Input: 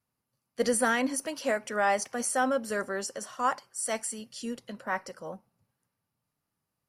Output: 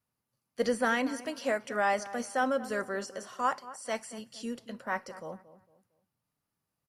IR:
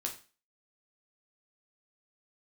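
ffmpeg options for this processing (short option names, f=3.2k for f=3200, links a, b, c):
-filter_complex "[0:a]acrossover=split=5200[a][b];[b]acompressor=threshold=-47dB:ratio=4:attack=1:release=60[c];[a][c]amix=inputs=2:normalize=0,asplit=2[d][e];[e]adelay=228,lowpass=f=1.6k:p=1,volume=-15dB,asplit=2[f][g];[g]adelay=228,lowpass=f=1.6k:p=1,volume=0.34,asplit=2[h][i];[i]adelay=228,lowpass=f=1.6k:p=1,volume=0.34[j];[d][f][h][j]amix=inputs=4:normalize=0,asplit=2[k][l];[1:a]atrim=start_sample=2205[m];[l][m]afir=irnorm=-1:irlink=0,volume=-19dB[n];[k][n]amix=inputs=2:normalize=0,volume=-2.5dB"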